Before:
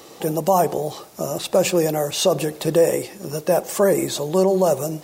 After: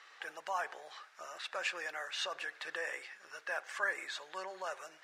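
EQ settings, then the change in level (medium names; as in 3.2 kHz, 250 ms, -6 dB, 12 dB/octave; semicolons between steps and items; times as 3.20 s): ladder band-pass 1.8 kHz, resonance 60%; +3.0 dB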